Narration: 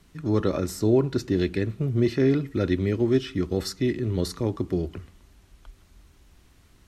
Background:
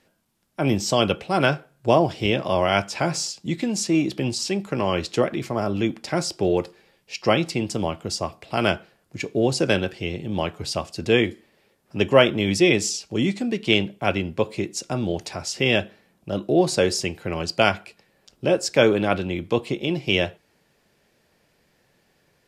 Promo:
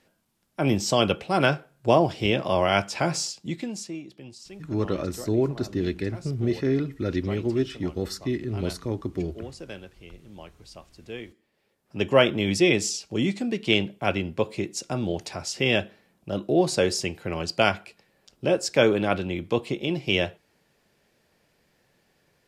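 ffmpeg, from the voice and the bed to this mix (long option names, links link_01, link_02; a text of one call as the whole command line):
ffmpeg -i stem1.wav -i stem2.wav -filter_complex "[0:a]adelay=4450,volume=-3dB[link_01];[1:a]volume=15dB,afade=type=out:start_time=3.19:duration=0.82:silence=0.133352,afade=type=in:start_time=11.3:duration=0.96:silence=0.149624[link_02];[link_01][link_02]amix=inputs=2:normalize=0" out.wav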